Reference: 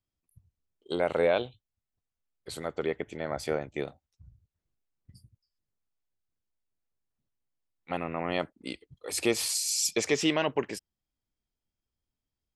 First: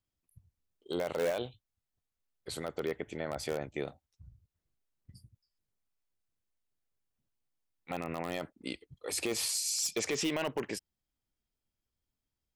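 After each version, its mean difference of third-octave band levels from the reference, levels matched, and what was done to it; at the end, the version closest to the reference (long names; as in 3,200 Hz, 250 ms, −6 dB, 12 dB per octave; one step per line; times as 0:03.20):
4.5 dB: in parallel at −11 dB: wrap-around overflow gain 18.5 dB
on the sum: brickwall limiter −21 dBFS, peak gain reduction 8.5 dB
level −2.5 dB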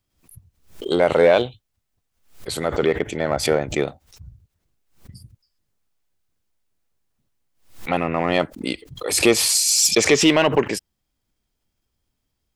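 2.5 dB: in parallel at −5 dB: hard clipping −25.5 dBFS, distortion −8 dB
on the sum: background raised ahead of every attack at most 130 dB per second
level +8 dB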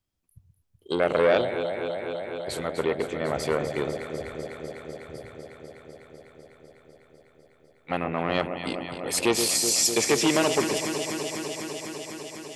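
8.0 dB: delay that swaps between a low-pass and a high-pass 125 ms, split 820 Hz, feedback 90%, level −8.5 dB
saturating transformer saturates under 950 Hz
level +5.5 dB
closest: second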